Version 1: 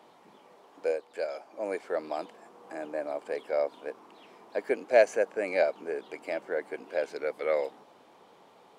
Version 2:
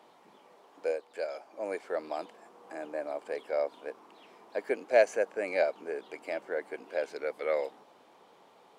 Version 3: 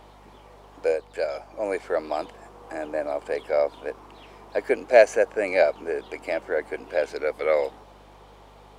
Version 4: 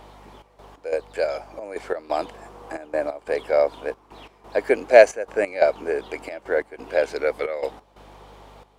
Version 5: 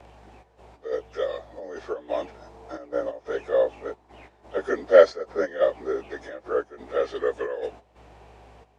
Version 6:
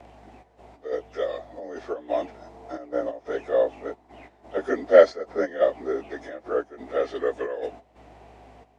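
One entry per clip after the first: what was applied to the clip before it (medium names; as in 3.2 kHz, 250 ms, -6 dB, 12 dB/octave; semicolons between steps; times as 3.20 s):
bass shelf 210 Hz -5 dB; trim -1.5 dB
hum 50 Hz, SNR 28 dB; trim +8 dB
trance gate "xxxxx..xx..xxx" 179 bpm -12 dB; trim +3.5 dB
frequency axis rescaled in octaves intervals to 89%; trim -1.5 dB
small resonant body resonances 260/680/2000 Hz, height 7 dB, ringing for 25 ms; trim -1.5 dB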